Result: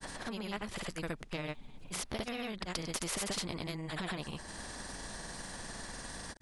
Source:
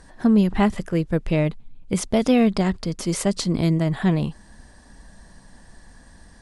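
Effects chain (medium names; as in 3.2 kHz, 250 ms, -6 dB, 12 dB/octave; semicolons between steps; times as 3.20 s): dynamic bell 7.3 kHz, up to -7 dB, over -48 dBFS, Q 1.2; compression 4:1, threshold -31 dBFS, peak gain reduction 15 dB; saturation -20.5 dBFS, distortion -24 dB; granulator, pitch spread up and down by 0 st; spectrum-flattening compressor 2:1; trim +2.5 dB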